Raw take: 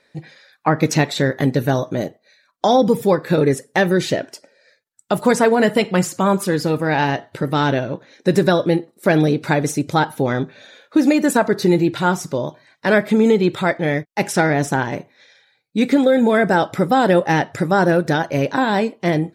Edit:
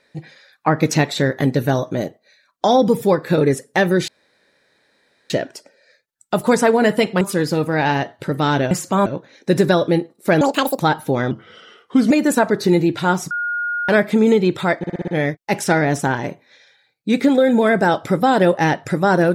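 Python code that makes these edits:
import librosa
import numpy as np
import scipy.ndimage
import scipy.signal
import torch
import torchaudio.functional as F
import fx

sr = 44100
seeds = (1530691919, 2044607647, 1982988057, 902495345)

y = fx.edit(x, sr, fx.insert_room_tone(at_s=4.08, length_s=1.22),
    fx.move(start_s=5.99, length_s=0.35, to_s=7.84),
    fx.speed_span(start_s=9.19, length_s=0.72, speed=1.85),
    fx.speed_span(start_s=10.42, length_s=0.67, speed=0.84),
    fx.bleep(start_s=12.29, length_s=0.58, hz=1430.0, db=-19.5),
    fx.stutter(start_s=13.76, slice_s=0.06, count=6), tone=tone)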